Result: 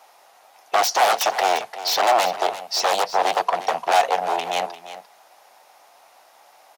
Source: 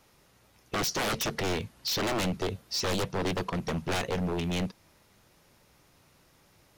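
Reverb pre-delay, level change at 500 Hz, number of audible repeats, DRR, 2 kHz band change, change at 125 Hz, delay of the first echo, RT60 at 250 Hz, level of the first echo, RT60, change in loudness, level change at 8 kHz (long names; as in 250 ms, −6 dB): no reverb audible, +10.0 dB, 1, no reverb audible, +9.0 dB, below −15 dB, 347 ms, no reverb audible, −13.5 dB, no reverb audible, +10.0 dB, +8.0 dB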